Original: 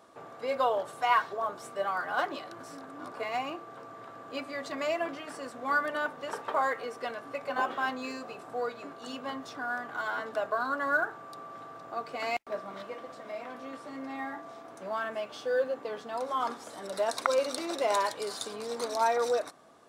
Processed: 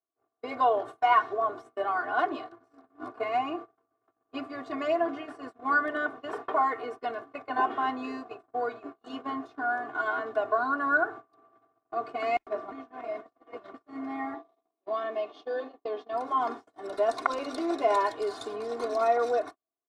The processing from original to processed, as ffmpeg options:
-filter_complex "[0:a]asettb=1/sr,asplit=3[s0][s1][s2];[s0]atrim=end=8.954[s3];[s1]atrim=start=8.95:end=10.13,asetpts=PTS-STARTPTS,afade=t=in:d=0.004:c=qsin,afade=t=out:st=1.176:d=0.004:c=qsin,asplit=2[s4][s5];[s5]adelay=14,volume=0.398[s6];[s4][s6]amix=inputs=2:normalize=0,atrim=end_sample=52038[s7];[s2]atrim=start=10.126[s8];[s3][s7]acrossfade=d=0.004:c1=hsin:c2=qsin[s9];[s9][s8]acrossfade=d=0.004:c1=qsin:c2=hsin,asettb=1/sr,asplit=3[s10][s11][s12];[s10]atrim=end=14.344[s13];[s11]atrim=start=14.34:end=16.13,asetpts=PTS-STARTPTS,afade=t=in:d=0.004:c=qsin,afade=t=out:st=1.786:d=0.004:c=qsin,highpass=240,equalizer=f=1500:t=q:w=4:g=-10,equalizer=f=3700:t=q:w=4:g=7,equalizer=f=7700:t=q:w=4:g=-9,lowpass=f=8600:w=0.5412,lowpass=f=8600:w=1.3066[s14];[s12]atrim=start=16.126[s15];[s13][s14]acrossfade=d=0.004:c1=hsin:c2=qsin[s16];[s16][s15]acrossfade=d=0.004:c1=qsin:c2=hsin,asplit=3[s17][s18][s19];[s17]atrim=end=12.722[s20];[s18]atrim=start=12.718:end=13.742,asetpts=PTS-STARTPTS,areverse[s21];[s19]atrim=start=13.738[s22];[s20][s21]acrossfade=d=0.004:c1=hsin:c2=hsin[s23];[s23][s22]acrossfade=d=0.004:c1=hsin:c2=hsin,aecho=1:1:2.8:0.99,agate=range=0.00794:threshold=0.0126:ratio=16:detection=peak,lowpass=f=1200:p=1,volume=1.19"

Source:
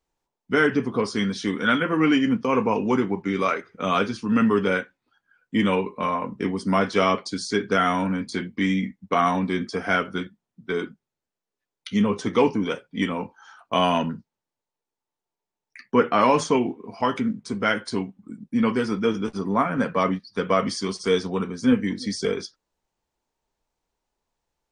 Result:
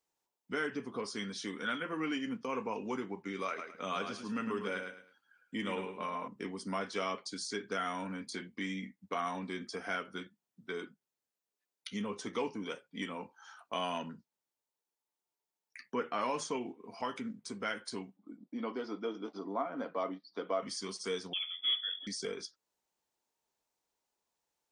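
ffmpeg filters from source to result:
-filter_complex "[0:a]asettb=1/sr,asplit=3[s0][s1][s2];[s0]atrim=end=3.474[s3];[s1]atrim=start=3.47:end=6.28,asetpts=PTS-STARTPTS,afade=t=in:d=0.004:c=qsin,afade=t=out:st=2.806:d=0.004:c=qsin,aecho=1:1:107|214|321:0.422|0.0928|0.0204,atrim=end_sample=123921[s4];[s2]atrim=start=6.276[s5];[s3][s4]acrossfade=d=0.004:c1=hsin:c2=qsin[s6];[s6][s5]acrossfade=d=0.004:c1=qsin:c2=hsin,asplit=3[s7][s8][s9];[s7]afade=t=out:st=18.16:d=0.02[s10];[s8]highpass=270,equalizer=f=300:t=q:w=4:g=8,equalizer=f=680:t=q:w=4:g=8,equalizer=f=1700:t=q:w=4:g=-8,equalizer=f=2600:t=q:w=4:g=-9,lowpass=f=4500:w=0.5412,lowpass=f=4500:w=1.3066,afade=t=in:st=18.16:d=0.02,afade=t=out:st=20.61:d=0.02[s11];[s9]afade=t=in:st=20.61:d=0.02[s12];[s10][s11][s12]amix=inputs=3:normalize=0,asettb=1/sr,asplit=3[s13][s14][s15];[s13]atrim=end=21.334[s16];[s14]atrim=start=21.33:end=22.07,asetpts=PTS-STARTPTS,afade=t=in:d=0.004:c=qsin,afade=t=out:st=0.736:d=0.004:c=qsin,lowpass=f=3100:t=q:w=0.5098,lowpass=f=3100:t=q:w=0.6013,lowpass=f=3100:t=q:w=0.9,lowpass=f=3100:t=q:w=2.563,afreqshift=-3600[s17];[s15]atrim=start=22.066[s18];[s16][s17]acrossfade=d=0.004:c1=hsin:c2=qsin[s19];[s19][s18]acrossfade=d=0.004:c1=qsin:c2=hsin,highpass=f=270:p=1,highshelf=f=5000:g=7.5,acompressor=threshold=0.00794:ratio=1.5,volume=0.501"

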